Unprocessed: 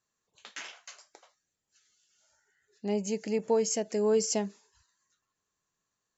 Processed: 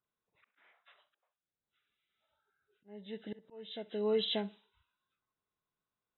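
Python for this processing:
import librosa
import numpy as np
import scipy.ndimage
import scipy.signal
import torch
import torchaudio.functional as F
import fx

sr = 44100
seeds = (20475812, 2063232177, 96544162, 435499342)

p1 = fx.freq_compress(x, sr, knee_hz=1100.0, ratio=1.5)
p2 = fx.dynamic_eq(p1, sr, hz=2600.0, q=2.0, threshold_db=-51.0, ratio=4.0, max_db=6)
p3 = fx.auto_swell(p2, sr, attack_ms=613.0)
p4 = p3 + fx.echo_tape(p3, sr, ms=65, feedback_pct=24, wet_db=-19, lp_hz=4400.0, drive_db=19.0, wow_cents=17, dry=0)
p5 = fx.env_lowpass(p4, sr, base_hz=1900.0, full_db=-27.0)
y = F.gain(torch.from_numpy(p5), -5.5).numpy()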